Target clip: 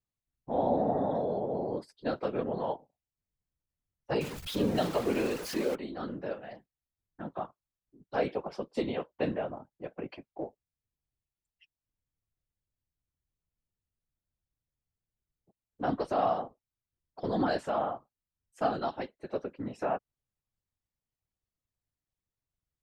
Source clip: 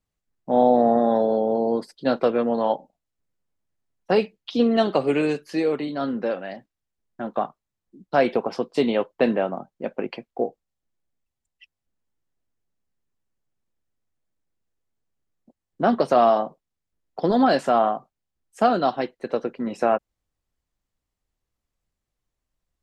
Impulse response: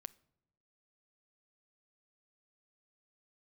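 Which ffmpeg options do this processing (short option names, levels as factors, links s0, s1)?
-filter_complex "[0:a]asettb=1/sr,asplit=3[s0][s1][s2];[s0]atrim=end=4.214[s3];[s1]atrim=start=4.21:end=5.75,asetpts=PTS-STARTPTS,afade=t=in:d=0.004:c=qsin,afade=t=out:st=1.536:d=0.004:c=qsin,aeval=exprs='val(0)+0.5*0.0708*sgn(val(0))':c=same[s4];[s2]atrim=start=5.746[s5];[s3][s4]acrossfade=d=0.004:c1=hsin:c2=qsin[s6];[s6][s5]acrossfade=d=0.004:c1=qsin:c2=hsin,afftfilt=real='hypot(re,im)*cos(2*PI*random(0))':imag='hypot(re,im)*sin(2*PI*random(1))':win_size=512:overlap=0.75,volume=0.562"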